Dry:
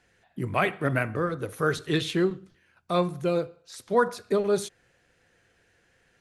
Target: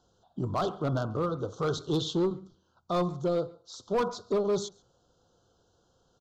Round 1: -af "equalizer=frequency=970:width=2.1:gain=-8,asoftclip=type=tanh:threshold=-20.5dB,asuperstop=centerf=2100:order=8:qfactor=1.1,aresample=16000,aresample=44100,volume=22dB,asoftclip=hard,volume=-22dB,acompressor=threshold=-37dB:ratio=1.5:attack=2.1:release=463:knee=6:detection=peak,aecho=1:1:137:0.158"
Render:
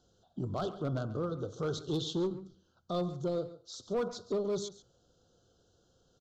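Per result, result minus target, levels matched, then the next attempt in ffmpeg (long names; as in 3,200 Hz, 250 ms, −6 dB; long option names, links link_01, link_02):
echo-to-direct +9.5 dB; downward compressor: peak gain reduction +5 dB; 1,000 Hz band −3.5 dB
-af "equalizer=frequency=970:width=2.1:gain=-8,asoftclip=type=tanh:threshold=-20.5dB,asuperstop=centerf=2100:order=8:qfactor=1.1,aresample=16000,aresample=44100,volume=22dB,asoftclip=hard,volume=-22dB,acompressor=threshold=-37dB:ratio=1.5:attack=2.1:release=463:knee=6:detection=peak,aecho=1:1:137:0.0531"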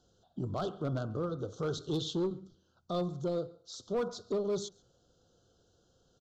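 downward compressor: peak gain reduction +5 dB; 1,000 Hz band −4.0 dB
-af "equalizer=frequency=970:width=2.1:gain=-8,asoftclip=type=tanh:threshold=-20.5dB,asuperstop=centerf=2100:order=8:qfactor=1.1,aresample=16000,aresample=44100,volume=22dB,asoftclip=hard,volume=-22dB,aecho=1:1:137:0.0531"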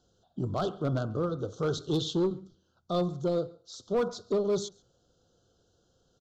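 1,000 Hz band −4.0 dB
-af "equalizer=frequency=970:width=2.1:gain=2.5,asoftclip=type=tanh:threshold=-20.5dB,asuperstop=centerf=2100:order=8:qfactor=1.1,aresample=16000,aresample=44100,volume=22dB,asoftclip=hard,volume=-22dB,aecho=1:1:137:0.0531"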